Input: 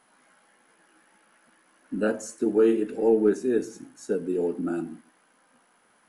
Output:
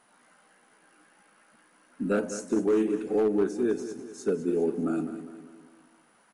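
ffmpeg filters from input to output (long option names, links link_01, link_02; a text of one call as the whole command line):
ffmpeg -i in.wav -af "alimiter=limit=-15dB:level=0:latency=1:release=477,asoftclip=type=hard:threshold=-18dB,aecho=1:1:194|388|582|776|970:0.251|0.123|0.0603|0.0296|0.0145,asetrate=42336,aresample=44100" out.wav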